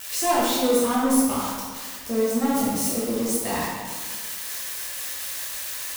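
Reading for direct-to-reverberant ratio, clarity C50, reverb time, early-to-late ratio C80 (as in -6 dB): -8.0 dB, -1.0 dB, 1.6 s, 1.0 dB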